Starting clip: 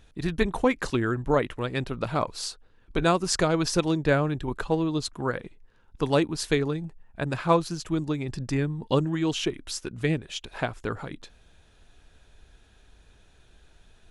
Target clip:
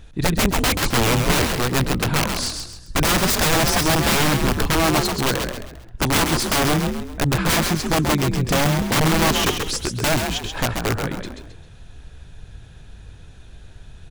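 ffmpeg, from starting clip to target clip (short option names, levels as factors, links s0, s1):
-filter_complex "[0:a]aeval=exprs='(mod(11.9*val(0)+1,2)-1)/11.9':c=same,lowshelf=f=170:g=6.5,asplit=5[s0][s1][s2][s3][s4];[s1]adelay=133,afreqshift=50,volume=0.531[s5];[s2]adelay=266,afreqshift=100,volume=0.197[s6];[s3]adelay=399,afreqshift=150,volume=0.0724[s7];[s4]adelay=532,afreqshift=200,volume=0.0269[s8];[s0][s5][s6][s7][s8]amix=inputs=5:normalize=0,volume=2.37"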